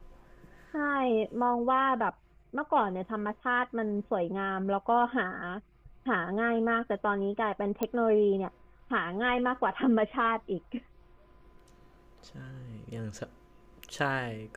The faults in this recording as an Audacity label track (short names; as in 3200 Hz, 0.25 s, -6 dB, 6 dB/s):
7.830000	7.830000	pop -16 dBFS